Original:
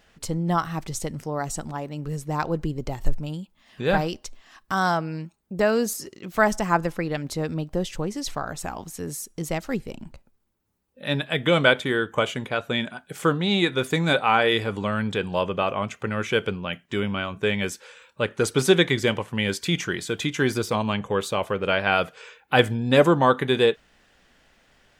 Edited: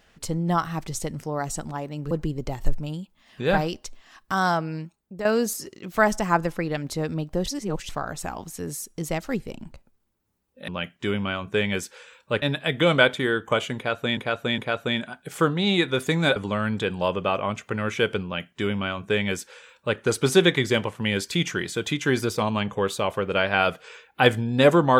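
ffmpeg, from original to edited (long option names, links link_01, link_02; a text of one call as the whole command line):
ffmpeg -i in.wav -filter_complex "[0:a]asplit=10[link_01][link_02][link_03][link_04][link_05][link_06][link_07][link_08][link_09][link_10];[link_01]atrim=end=2.112[link_11];[link_02]atrim=start=2.508:end=5.65,asetpts=PTS-STARTPTS,afade=type=out:start_time=2.672:duration=0.47:silence=0.281838[link_12];[link_03]atrim=start=5.65:end=7.862,asetpts=PTS-STARTPTS,afade=type=in:duration=0.004:curve=hsin:silence=0.281838[link_13];[link_04]atrim=start=7.858:end=8.292,asetpts=PTS-STARTPTS,areverse[link_14];[link_05]atrim=start=8.288:end=11.082[link_15];[link_06]atrim=start=16.568:end=18.312[link_16];[link_07]atrim=start=11.078:end=12.832[link_17];[link_08]atrim=start=12.418:end=12.832[link_18];[link_09]atrim=start=12.418:end=14.202[link_19];[link_10]atrim=start=14.688[link_20];[link_12][link_13]concat=n=2:v=0:a=1[link_21];[link_11][link_21]acrossfade=duration=0.004:curve1=hsin:curve2=hsin[link_22];[link_22][link_14]acrossfade=duration=0.004:curve1=hsin:curve2=hsin[link_23];[link_23][link_15]acrossfade=duration=0.004:curve1=hsin:curve2=hsin[link_24];[link_24][link_16]acrossfade=duration=0.004:curve1=hsin:curve2=hsin[link_25];[link_25][link_17]acrossfade=duration=0.004:curve1=hsin:curve2=hsin[link_26];[link_26][link_18]acrossfade=duration=0.004:curve1=hsin:curve2=hsin[link_27];[link_27][link_19]acrossfade=duration=0.004:curve1=hsin:curve2=hsin[link_28];[link_28][link_20]acrossfade=duration=0.004:curve1=hsin:curve2=hsin" out.wav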